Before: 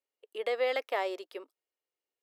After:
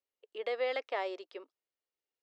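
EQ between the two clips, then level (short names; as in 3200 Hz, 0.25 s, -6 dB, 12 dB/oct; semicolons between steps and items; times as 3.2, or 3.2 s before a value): LPF 6100 Hz 24 dB/oct; -3.5 dB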